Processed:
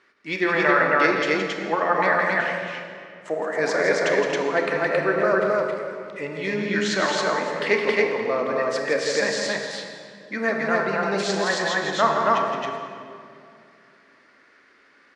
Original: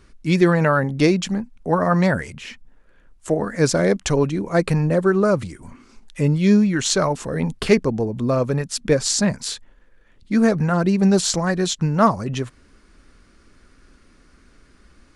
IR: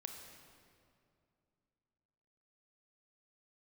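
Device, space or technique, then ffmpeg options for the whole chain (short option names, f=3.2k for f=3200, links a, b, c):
station announcement: -filter_complex "[0:a]highpass=490,lowpass=4k,equalizer=f=1.9k:t=o:w=0.4:g=8,aecho=1:1:166.2|271.1:0.447|0.891[a];[1:a]atrim=start_sample=2205[b];[a][b]afir=irnorm=-1:irlink=0,volume=2dB"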